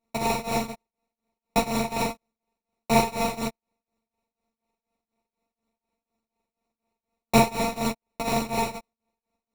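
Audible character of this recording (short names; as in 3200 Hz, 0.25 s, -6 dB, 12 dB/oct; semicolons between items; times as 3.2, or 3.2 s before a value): a buzz of ramps at a fixed pitch in blocks of 64 samples; tremolo triangle 4.1 Hz, depth 95%; aliases and images of a low sample rate 1600 Hz, jitter 0%; a shimmering, thickened sound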